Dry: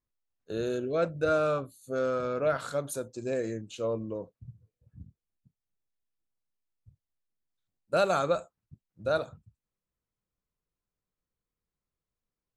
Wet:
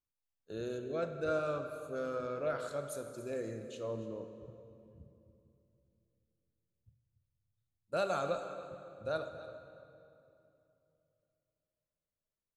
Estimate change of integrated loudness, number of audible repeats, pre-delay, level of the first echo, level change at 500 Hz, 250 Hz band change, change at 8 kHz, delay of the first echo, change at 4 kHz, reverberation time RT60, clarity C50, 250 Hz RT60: −8.0 dB, 1, 21 ms, −16.0 dB, −7.5 dB, −7.5 dB, −8.0 dB, 285 ms, −8.0 dB, 2.8 s, 7.5 dB, 3.4 s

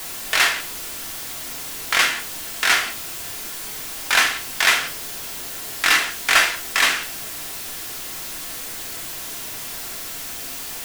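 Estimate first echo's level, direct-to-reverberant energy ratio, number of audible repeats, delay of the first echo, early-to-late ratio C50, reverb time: no echo audible, 2.0 dB, no echo audible, no echo audible, 12.0 dB, 0.40 s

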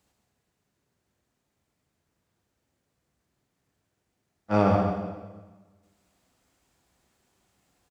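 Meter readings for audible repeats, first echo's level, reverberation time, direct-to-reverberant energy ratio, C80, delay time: 1, −6.0 dB, 1.3 s, 0.5 dB, 2.5 dB, 134 ms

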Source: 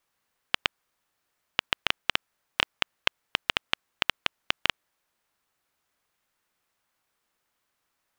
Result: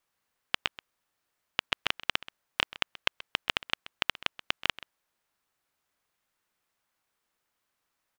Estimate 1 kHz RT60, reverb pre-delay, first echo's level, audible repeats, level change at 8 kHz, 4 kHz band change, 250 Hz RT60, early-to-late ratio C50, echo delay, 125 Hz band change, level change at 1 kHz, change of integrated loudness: no reverb audible, no reverb audible, −17.5 dB, 1, −3.0 dB, −3.0 dB, no reverb audible, no reverb audible, 130 ms, −3.0 dB, −3.0 dB, −3.0 dB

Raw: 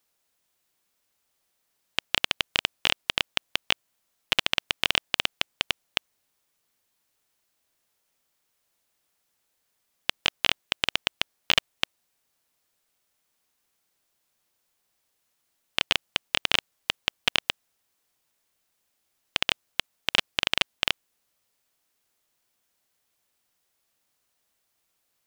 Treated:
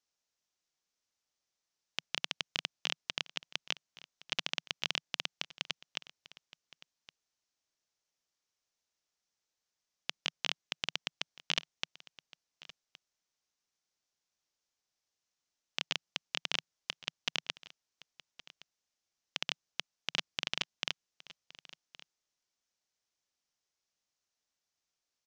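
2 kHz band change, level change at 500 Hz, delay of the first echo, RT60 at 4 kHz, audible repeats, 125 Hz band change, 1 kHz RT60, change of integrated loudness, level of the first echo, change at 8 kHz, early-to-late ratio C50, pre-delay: −12.0 dB, −13.0 dB, 1,117 ms, no reverb audible, 1, −9.5 dB, no reverb audible, −11.0 dB, −19.5 dB, −8.0 dB, no reverb audible, no reverb audible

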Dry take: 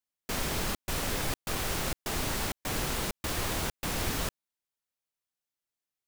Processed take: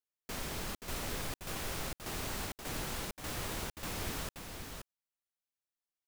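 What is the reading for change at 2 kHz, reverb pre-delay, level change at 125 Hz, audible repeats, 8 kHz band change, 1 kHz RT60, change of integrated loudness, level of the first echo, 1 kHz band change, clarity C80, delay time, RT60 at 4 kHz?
−7.0 dB, no reverb audible, −7.0 dB, 1, −7.0 dB, no reverb audible, −7.5 dB, −6.0 dB, −7.0 dB, no reverb audible, 528 ms, no reverb audible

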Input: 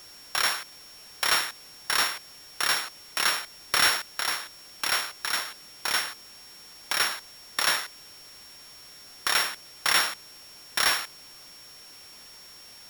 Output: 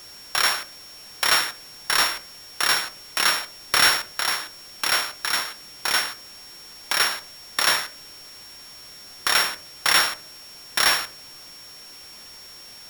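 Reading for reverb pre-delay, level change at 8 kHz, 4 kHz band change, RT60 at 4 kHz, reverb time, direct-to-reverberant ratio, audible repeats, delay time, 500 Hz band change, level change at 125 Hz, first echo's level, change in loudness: 14 ms, +4.0 dB, +4.5 dB, 0.30 s, 0.45 s, 11.5 dB, no echo audible, no echo audible, +4.5 dB, +5.0 dB, no echo audible, +4.5 dB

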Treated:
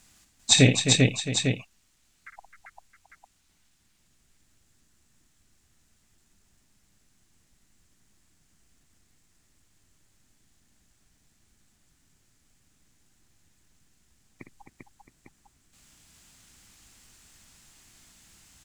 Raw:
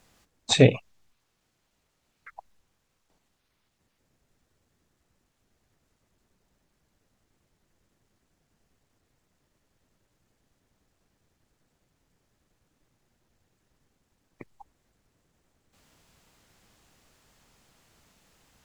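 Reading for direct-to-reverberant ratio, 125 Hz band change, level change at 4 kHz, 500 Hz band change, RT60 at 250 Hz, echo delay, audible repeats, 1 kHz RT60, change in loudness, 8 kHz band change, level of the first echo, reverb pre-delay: no reverb audible, +2.5 dB, +7.0 dB, −4.0 dB, no reverb audible, 57 ms, 5, no reverb audible, −0.5 dB, +11.5 dB, −8.5 dB, no reverb audible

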